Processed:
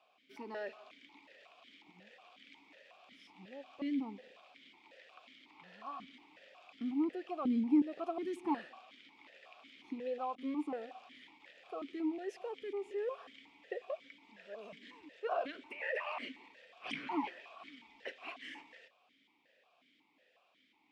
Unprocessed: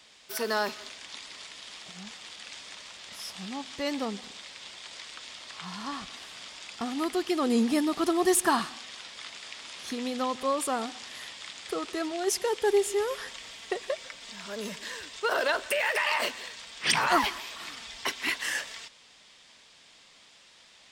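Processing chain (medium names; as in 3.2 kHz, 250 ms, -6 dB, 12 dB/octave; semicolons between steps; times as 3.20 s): 10.35–11.40 s: gate with hold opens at -32 dBFS; treble shelf 2.2 kHz -9.5 dB; saturation -21 dBFS, distortion -16 dB; stepped vowel filter 5.5 Hz; trim +3 dB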